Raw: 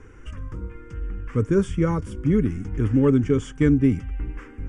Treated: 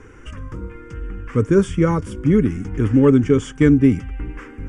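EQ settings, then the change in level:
low-shelf EQ 100 Hz −7 dB
+6.0 dB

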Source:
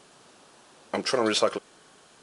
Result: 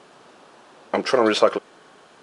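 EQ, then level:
low-pass filter 1,800 Hz 6 dB per octave
low-shelf EQ 150 Hz −11.5 dB
+8.5 dB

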